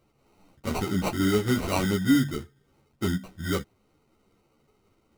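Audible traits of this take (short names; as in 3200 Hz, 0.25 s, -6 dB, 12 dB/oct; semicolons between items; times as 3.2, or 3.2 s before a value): aliases and images of a low sample rate 1700 Hz, jitter 0%; a shimmering, thickened sound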